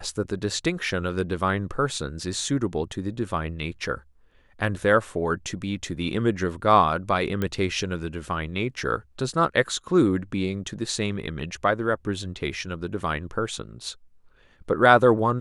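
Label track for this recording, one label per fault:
7.420000	7.420000	pop -14 dBFS

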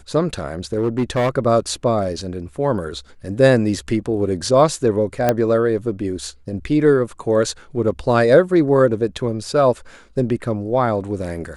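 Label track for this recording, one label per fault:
0.730000	1.360000	clipped -14 dBFS
5.290000	5.290000	pop -3 dBFS

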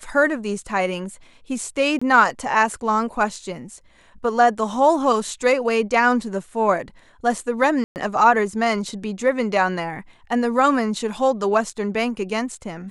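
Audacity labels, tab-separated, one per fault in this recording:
1.990000	2.020000	dropout 25 ms
7.840000	7.960000	dropout 119 ms

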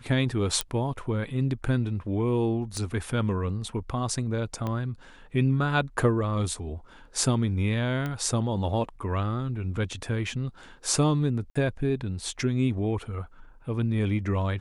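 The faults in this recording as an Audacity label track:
0.610000	0.610000	pop -9 dBFS
2.770000	2.770000	pop -22 dBFS
4.670000	4.670000	pop -19 dBFS
8.060000	8.060000	pop -19 dBFS
11.500000	11.550000	dropout 55 ms

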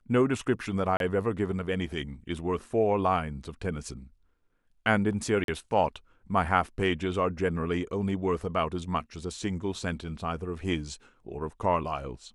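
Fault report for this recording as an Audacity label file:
0.970000	1.000000	dropout 32 ms
5.440000	5.480000	dropout 42 ms

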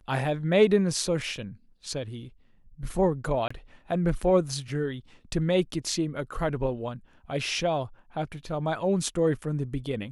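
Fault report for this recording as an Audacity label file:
3.480000	3.500000	dropout 25 ms

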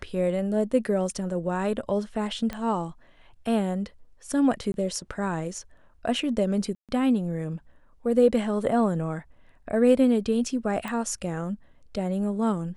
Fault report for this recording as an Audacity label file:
2.530000	2.530000	pop -19 dBFS
4.720000	4.740000	dropout 21 ms
6.750000	6.890000	dropout 137 ms
10.880000	10.880000	pop

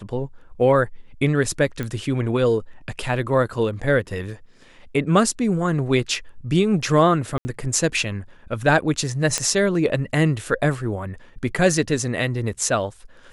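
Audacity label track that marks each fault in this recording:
1.830000	1.830000	pop -15 dBFS
7.380000	7.450000	dropout 70 ms
9.380000	9.380000	pop -6 dBFS

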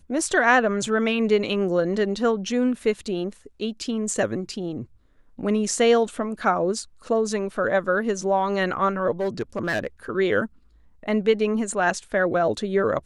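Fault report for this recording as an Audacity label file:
9.110000	9.870000	clipped -20 dBFS

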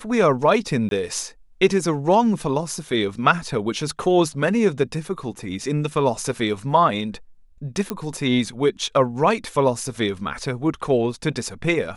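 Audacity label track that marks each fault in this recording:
0.890000	0.910000	dropout 22 ms
7.900000	7.900000	pop -11 dBFS

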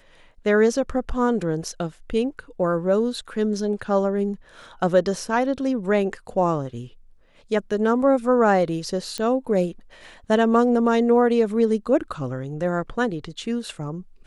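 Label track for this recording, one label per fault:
9.180000	9.180000	pop -14 dBFS

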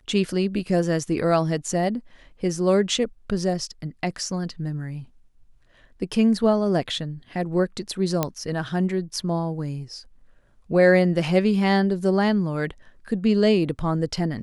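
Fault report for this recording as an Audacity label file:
8.230000	8.230000	pop -7 dBFS

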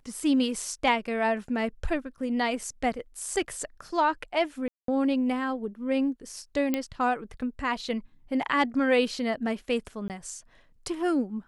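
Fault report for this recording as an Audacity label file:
4.680000	4.880000	dropout 203 ms
6.740000	6.740000	pop -13 dBFS
10.080000	10.100000	dropout 18 ms

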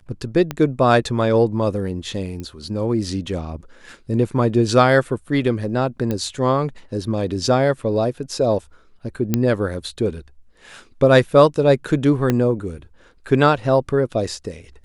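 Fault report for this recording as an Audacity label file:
0.510000	0.510000	pop -10 dBFS
2.400000	2.400000	pop -19 dBFS
6.110000	6.110000	pop -11 dBFS
9.340000	9.340000	pop -4 dBFS
12.300000	12.300000	pop -6 dBFS

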